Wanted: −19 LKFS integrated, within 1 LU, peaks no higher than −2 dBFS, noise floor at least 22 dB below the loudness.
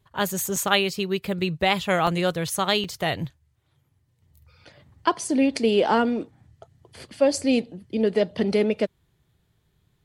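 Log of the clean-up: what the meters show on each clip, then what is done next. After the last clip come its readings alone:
number of dropouts 3; longest dropout 3.3 ms; integrated loudness −23.5 LKFS; sample peak −4.5 dBFS; target loudness −19.0 LKFS
→ repair the gap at 0:00.56/0:02.07/0:02.84, 3.3 ms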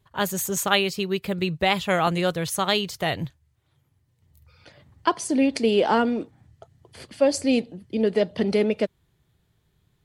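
number of dropouts 0; integrated loudness −23.5 LKFS; sample peak −4.5 dBFS; target loudness −19.0 LKFS
→ level +4.5 dB
brickwall limiter −2 dBFS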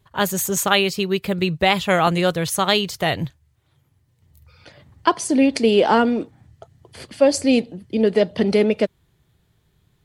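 integrated loudness −19.5 LKFS; sample peak −2.0 dBFS; background noise floor −64 dBFS

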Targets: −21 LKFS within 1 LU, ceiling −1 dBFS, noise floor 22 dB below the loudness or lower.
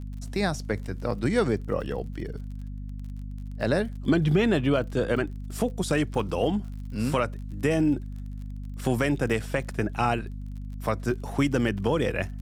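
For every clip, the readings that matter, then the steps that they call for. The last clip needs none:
crackle rate 37 per second; mains hum 50 Hz; hum harmonics up to 250 Hz; level of the hum −33 dBFS; integrated loudness −27.0 LKFS; sample peak −11.0 dBFS; target loudness −21.0 LKFS
→ click removal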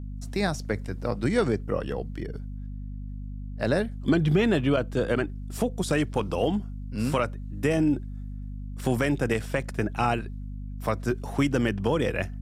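crackle rate 0.081 per second; mains hum 50 Hz; hum harmonics up to 250 Hz; level of the hum −33 dBFS
→ mains-hum notches 50/100/150/200/250 Hz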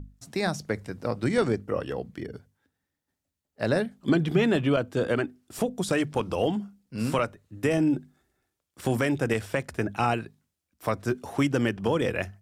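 mains hum none found; integrated loudness −27.5 LKFS; sample peak −10.0 dBFS; target loudness −21.0 LKFS
→ level +6.5 dB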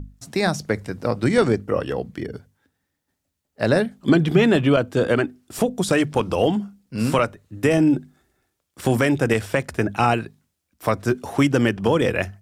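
integrated loudness −21.0 LKFS; sample peak −3.5 dBFS; background noise floor −78 dBFS

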